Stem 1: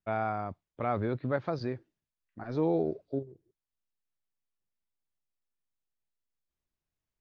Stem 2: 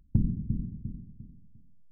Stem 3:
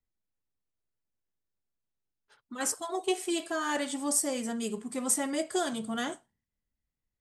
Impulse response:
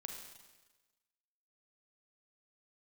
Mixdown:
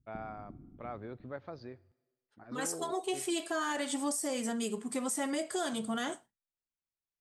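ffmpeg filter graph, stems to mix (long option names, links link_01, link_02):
-filter_complex "[0:a]volume=-12dB,asplit=2[link_01][link_02];[link_02]volume=-16.5dB[link_03];[1:a]acompressor=threshold=-31dB:ratio=6,aeval=exprs='val(0)*sin(2*PI*93*n/s)':channel_layout=same,volume=-8dB[link_04];[2:a]agate=range=-33dB:threshold=-50dB:ratio=3:detection=peak,alimiter=limit=-22.5dB:level=0:latency=1:release=30,volume=2dB[link_05];[3:a]atrim=start_sample=2205[link_06];[link_03][link_06]afir=irnorm=-1:irlink=0[link_07];[link_01][link_04][link_05][link_07]amix=inputs=4:normalize=0,lowshelf=frequency=130:gain=-7,alimiter=level_in=1dB:limit=-24dB:level=0:latency=1:release=146,volume=-1dB"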